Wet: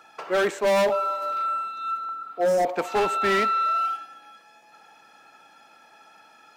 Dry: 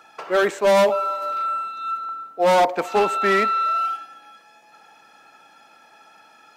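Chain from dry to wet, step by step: spectral repair 2.22–2.67, 730–5000 Hz both; hard clip -15.5 dBFS, distortion -14 dB; gain -2 dB

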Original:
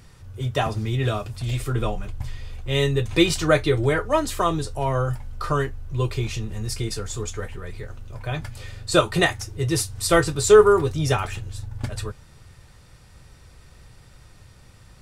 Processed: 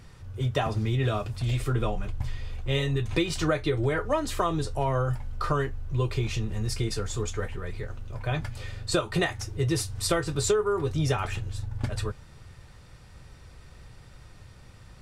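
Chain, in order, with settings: high shelf 6700 Hz -7.5 dB; compressor 16:1, threshold -21 dBFS, peak gain reduction 14.5 dB; spectral repair 2.79–3.03, 410–1100 Hz both

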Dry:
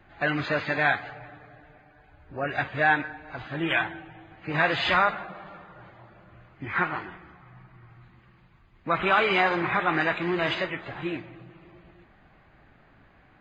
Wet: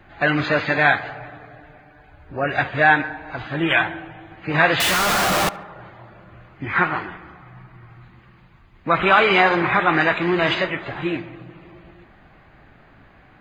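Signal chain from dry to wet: 4.8–5.49 infinite clipping; tape echo 71 ms, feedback 80%, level -19 dB, low-pass 2100 Hz; gain +7 dB

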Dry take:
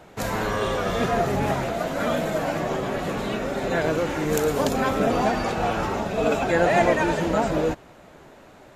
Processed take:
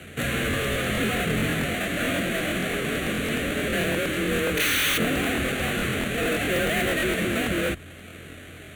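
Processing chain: half-waves squared off; LPF 11000 Hz 12 dB/oct; tilt shelf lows -4.5 dB, about 940 Hz; in parallel at -3 dB: compressor, threshold -30 dBFS, peak gain reduction 18.5 dB; on the sum: painted sound noise, 4.57–4.98, 740–6500 Hz -8 dBFS; soft clip -17 dBFS, distortion -5 dB; hum 60 Hz, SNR 25 dB; frequency shift +27 Hz; fixed phaser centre 2200 Hz, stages 4; crackling interface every 0.11 s, samples 1024, repeat, from 0.49

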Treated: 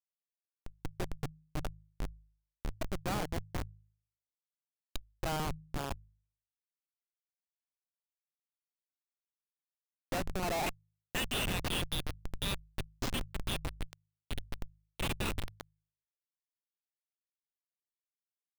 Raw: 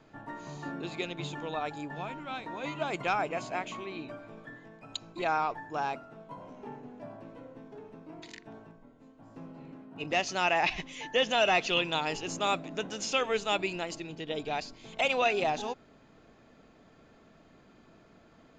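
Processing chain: high-pass sweep 120 Hz -> 3600 Hz, 9.89–11.45; Schmitt trigger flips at -26 dBFS; de-hum 52.07 Hz, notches 3; gain +2 dB

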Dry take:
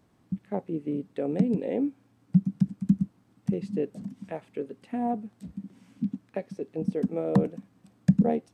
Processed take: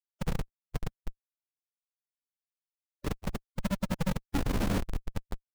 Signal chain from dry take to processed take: whole clip reversed; in parallel at +1 dB: compressor 10:1, threshold -38 dBFS, peak gain reduction 24.5 dB; on the sum: low-pass sweep 120 Hz -> 1500 Hz, 4.05–4.74; reverb RT60 1.6 s, pre-delay 10 ms, DRR -2 dB; Schmitt trigger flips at -17.5 dBFS; time stretch by phase-locked vocoder 0.65×; crackling interface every 0.69 s, samples 512, repeat, from 0.47

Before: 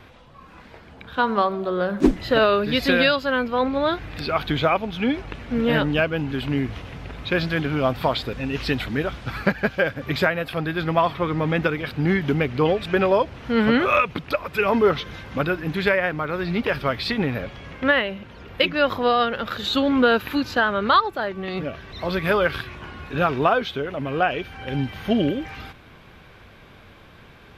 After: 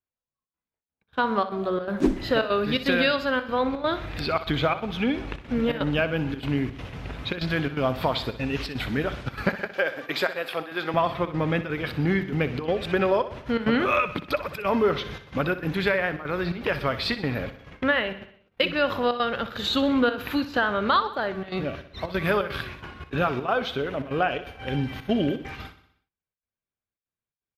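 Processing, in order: 9.49–10.94 HPF 380 Hz 12 dB/oct; gate -36 dBFS, range -50 dB; compressor 1.5:1, threshold -25 dBFS, peak gain reduction 5.5 dB; step gate "xxxxx.xxx.x" 168 bpm -12 dB; feedback echo 62 ms, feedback 56%, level -13.5 dB

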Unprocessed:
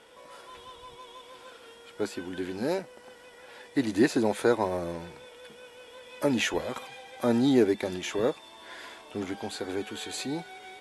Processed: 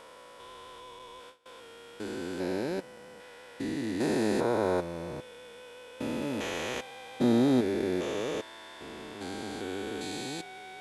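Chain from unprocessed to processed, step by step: stepped spectrum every 0.4 s; 0.99–1.46 gate with hold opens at -40 dBFS; gain +1.5 dB

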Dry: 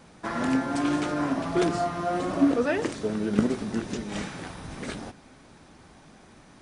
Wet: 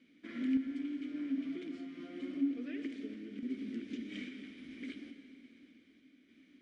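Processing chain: bell 140 Hz -9.5 dB 0.85 oct; compressor 5:1, threshold -29 dBFS, peak gain reduction 11.5 dB; vowel filter i; random-step tremolo; reverb RT60 3.3 s, pre-delay 67 ms, DRR 8 dB; gain +3.5 dB

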